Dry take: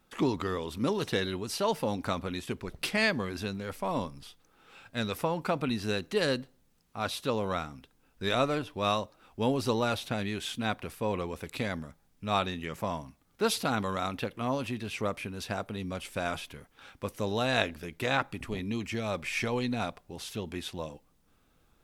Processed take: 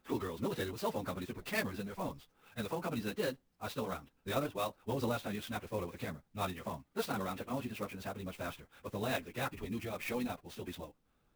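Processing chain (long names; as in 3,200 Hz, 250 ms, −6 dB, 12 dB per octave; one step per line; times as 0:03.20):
high-shelf EQ 3,100 Hz −4 dB
time stretch by phase vocoder 0.52×
converter with an unsteady clock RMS 0.026 ms
level −3 dB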